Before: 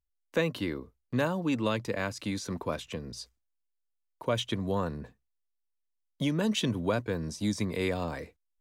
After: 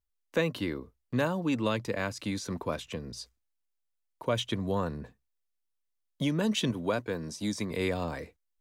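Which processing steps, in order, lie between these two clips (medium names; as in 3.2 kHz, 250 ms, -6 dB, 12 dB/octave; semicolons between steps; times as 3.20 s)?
6.71–7.71 s: bass shelf 110 Hz -12 dB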